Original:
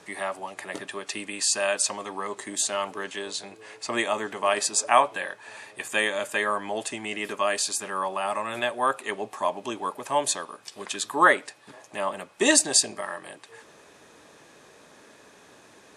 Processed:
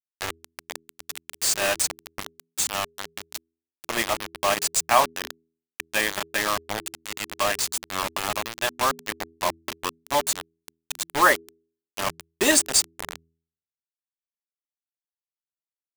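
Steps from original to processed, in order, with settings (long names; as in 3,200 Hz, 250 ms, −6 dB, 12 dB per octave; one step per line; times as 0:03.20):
bit reduction 4 bits
hum removal 82.04 Hz, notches 5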